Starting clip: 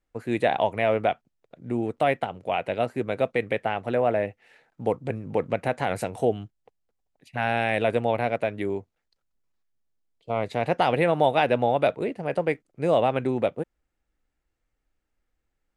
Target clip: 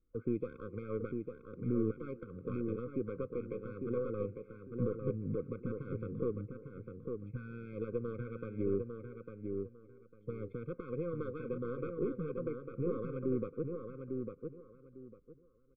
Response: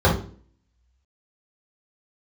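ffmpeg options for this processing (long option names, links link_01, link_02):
-filter_complex "[0:a]acompressor=threshold=-35dB:ratio=1.5,alimiter=level_in=2.5dB:limit=-24dB:level=0:latency=1:release=272,volume=-2.5dB,asplit=2[link_01][link_02];[link_02]adelay=390,highpass=300,lowpass=3400,asoftclip=type=hard:threshold=-35.5dB,volume=-19dB[link_03];[link_01][link_03]amix=inputs=2:normalize=0,aresample=11025,adynamicsmooth=sensitivity=1:basefreq=970,aresample=44100,aeval=exprs='0.0447*(cos(1*acos(clip(val(0)/0.0447,-1,1)))-cos(1*PI/2))+0.01*(cos(2*acos(clip(val(0)/0.0447,-1,1)))-cos(2*PI/2))+0.000355*(cos(7*acos(clip(val(0)/0.0447,-1,1)))-cos(7*PI/2))':channel_layout=same,asplit=2[link_04][link_05];[link_05]adelay=851,lowpass=frequency=2400:poles=1,volume=-5dB,asplit=2[link_06][link_07];[link_07]adelay=851,lowpass=frequency=2400:poles=1,volume=0.23,asplit=2[link_08][link_09];[link_09]adelay=851,lowpass=frequency=2400:poles=1,volume=0.23[link_10];[link_06][link_08][link_10]amix=inputs=3:normalize=0[link_11];[link_04][link_11]amix=inputs=2:normalize=0,afftfilt=real='re*eq(mod(floor(b*sr/1024/520),2),0)':imag='im*eq(mod(floor(b*sr/1024/520),2),0)':win_size=1024:overlap=0.75,volume=3.5dB"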